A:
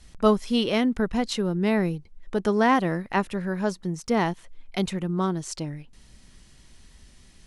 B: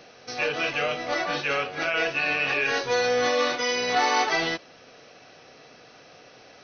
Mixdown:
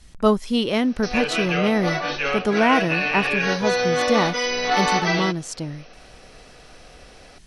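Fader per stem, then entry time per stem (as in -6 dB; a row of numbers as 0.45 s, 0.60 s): +2.0 dB, +2.0 dB; 0.00 s, 0.75 s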